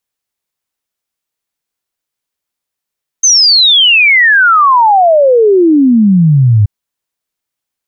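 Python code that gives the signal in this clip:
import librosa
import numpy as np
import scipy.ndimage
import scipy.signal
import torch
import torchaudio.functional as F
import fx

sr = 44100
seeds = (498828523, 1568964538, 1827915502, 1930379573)

y = fx.ess(sr, length_s=3.43, from_hz=6400.0, to_hz=99.0, level_db=-3.5)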